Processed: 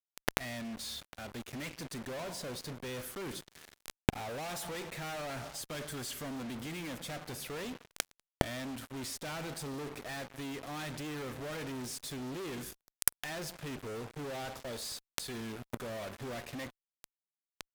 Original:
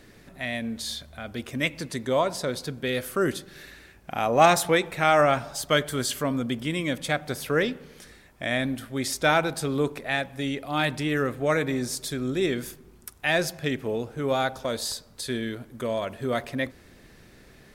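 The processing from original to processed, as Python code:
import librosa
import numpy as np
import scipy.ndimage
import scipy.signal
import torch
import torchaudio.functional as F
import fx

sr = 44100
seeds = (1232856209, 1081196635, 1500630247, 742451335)

y = fx.fuzz(x, sr, gain_db=46.0, gate_db=-40.0)
y = fx.gate_flip(y, sr, shuts_db=-16.0, range_db=-34)
y = y * librosa.db_to_amplitude(8.5)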